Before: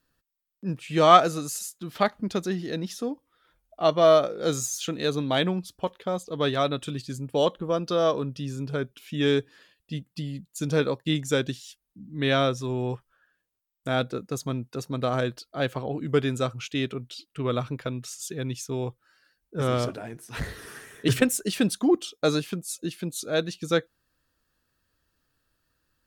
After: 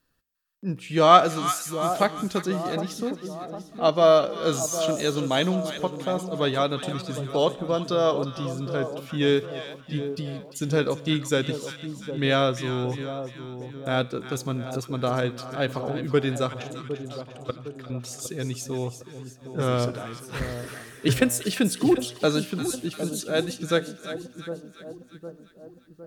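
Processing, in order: 16.62–17.9 level quantiser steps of 24 dB; resonator 61 Hz, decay 0.81 s, harmonics all, mix 40%; split-band echo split 1000 Hz, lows 0.759 s, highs 0.348 s, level -10 dB; gain +4.5 dB

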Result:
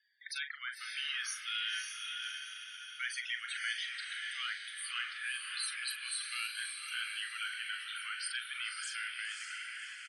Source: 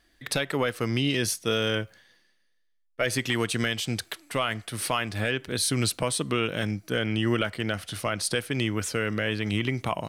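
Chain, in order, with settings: ending faded out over 1.26 s; steep high-pass 1400 Hz 48 dB/oct; soft clip -18.5 dBFS, distortion -21 dB; loudest bins only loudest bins 32; doubler 41 ms -8 dB; on a send: diffused feedback echo 0.566 s, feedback 51%, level -3 dB; on the sum: gain -6.5 dB

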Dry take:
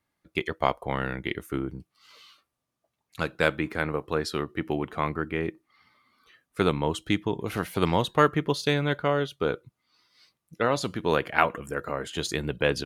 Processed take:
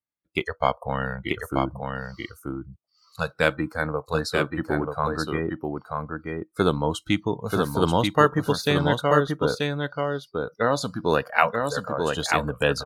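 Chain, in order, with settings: spectral noise reduction 22 dB; echo 0.934 s -4 dB; gain +2.5 dB

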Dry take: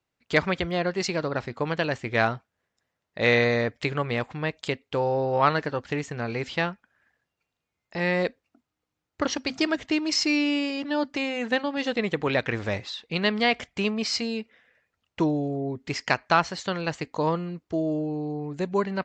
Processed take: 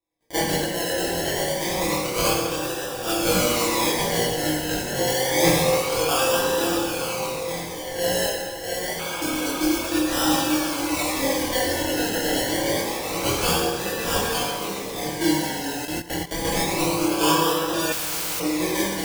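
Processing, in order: regenerating reverse delay 0.445 s, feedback 62%, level -4 dB; in parallel at -10 dB: bit-crush 7-bit; on the sum: bell 72 Hz -8.5 dB 2.7 oct; diffused feedback echo 0.628 s, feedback 80%, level -15 dB; decimation with a swept rate 29×, swing 60% 0.27 Hz; high shelf 2300 Hz +11 dB; reverb RT60 1.5 s, pre-delay 3 ms, DRR -6.5 dB; 9.01–9.72 spectral repair 500–4100 Hz after; 15.85–16.45 level quantiser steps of 16 dB; chorus voices 4, 0.21 Hz, delay 23 ms, depth 3.5 ms; 17.92–18.4 spectral compressor 4:1; gain -7.5 dB

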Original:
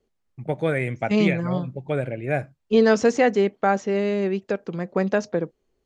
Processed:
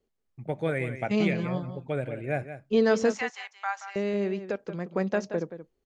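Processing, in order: 3.12–3.96 elliptic high-pass 870 Hz, stop band 70 dB; on a send: echo 0.177 s -11.5 dB; on the sum: gain -5.5 dB

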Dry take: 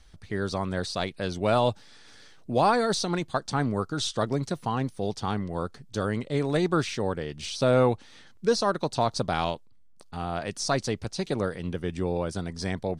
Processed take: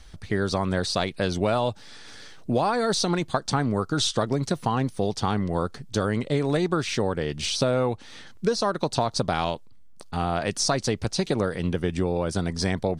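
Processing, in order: compressor 10:1, threshold -27 dBFS, peak gain reduction 10.5 dB; gain +7.5 dB

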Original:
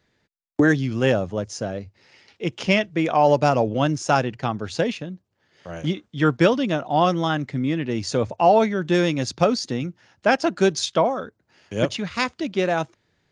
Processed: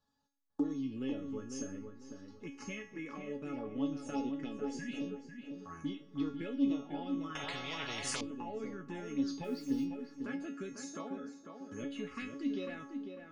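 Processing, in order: 4.13–4.75 graphic EQ 125/250/500/1000/2000/4000 Hz -6/+3/+11/-10/+4/+6 dB; 4.79–4.99 spectral repair 250–1600 Hz; compressor 4:1, threshold -28 dBFS, peak gain reduction 14.5 dB; resonator 280 Hz, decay 0.53 s, harmonics all, mix 90%; small resonant body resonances 260/1100 Hz, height 13 dB, ringing for 45 ms; envelope phaser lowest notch 360 Hz, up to 1600 Hz, full sweep at -33.5 dBFS; 9.44–9.84 requantised 12-bit, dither triangular; resonator 430 Hz, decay 0.17 s, harmonics all, mix 90%; darkening echo 0.498 s, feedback 29%, low-pass 2300 Hz, level -6.5 dB; on a send at -20 dB: reverb RT60 0.95 s, pre-delay 50 ms; 7.35–8.21 on the sum: spectral compressor 10:1; gain +17.5 dB

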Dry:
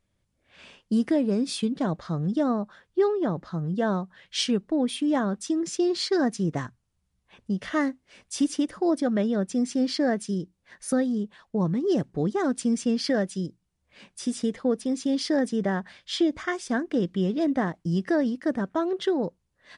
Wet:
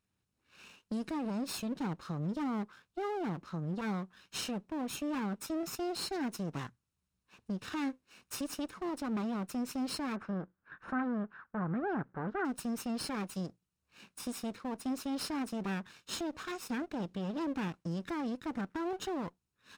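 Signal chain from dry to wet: minimum comb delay 0.74 ms; HPF 140 Hz 6 dB/oct; limiter -23.5 dBFS, peak gain reduction 10 dB; 10.16–12.45 synth low-pass 1500 Hz, resonance Q 4.1; gain -4.5 dB

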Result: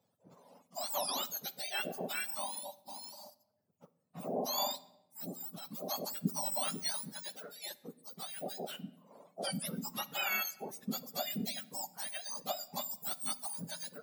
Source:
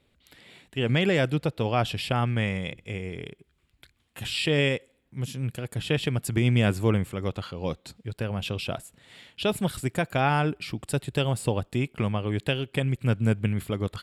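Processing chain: spectrum mirrored in octaves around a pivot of 1400 Hz; reverb removal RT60 0.87 s; on a send: reverb RT60 0.95 s, pre-delay 9 ms, DRR 15.5 dB; on the sum: gain -7.5 dB

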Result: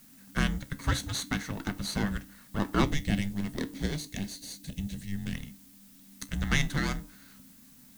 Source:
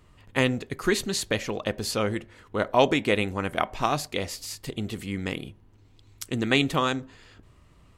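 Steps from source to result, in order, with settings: minimum comb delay 0.45 ms; LPF 12000 Hz; notch 2700 Hz, Q 8.7; added noise blue -54 dBFS; 2.84–5.34 bell 1600 Hz -13.5 dB 0.87 oct; frequency shift -300 Hz; bell 92 Hz -2.5 dB; resonator 66 Hz, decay 0.22 s, harmonics all, mix 50%

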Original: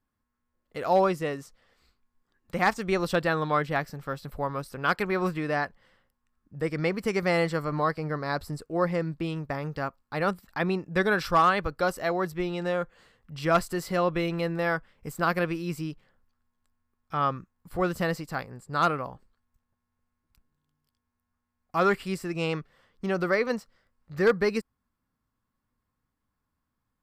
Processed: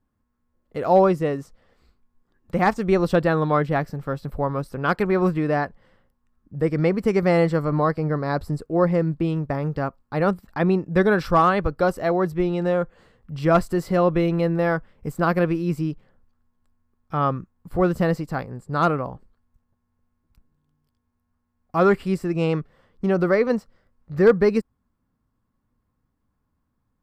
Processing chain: tilt shelf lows +6 dB, about 1100 Hz; gain +3 dB

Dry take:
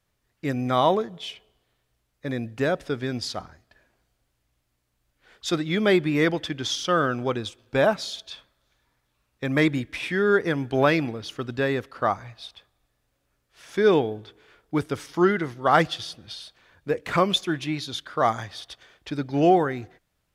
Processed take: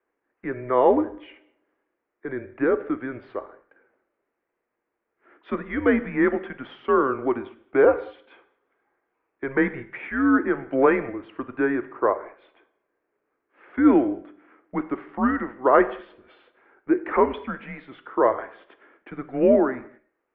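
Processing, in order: resonant low shelf 360 Hz -8 dB, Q 3; mistuned SSB -130 Hz 200–2300 Hz; non-linear reverb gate 0.25 s falling, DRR 11.5 dB

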